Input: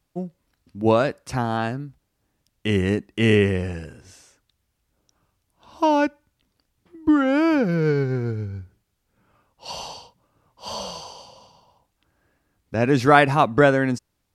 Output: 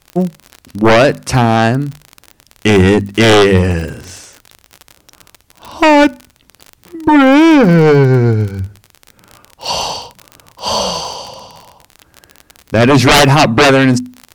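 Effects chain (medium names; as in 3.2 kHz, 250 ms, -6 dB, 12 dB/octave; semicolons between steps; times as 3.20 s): hum notches 50/100/150/200/250 Hz; sine folder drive 15 dB, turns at -1 dBFS; crackle 46 per s -17 dBFS; trim -2.5 dB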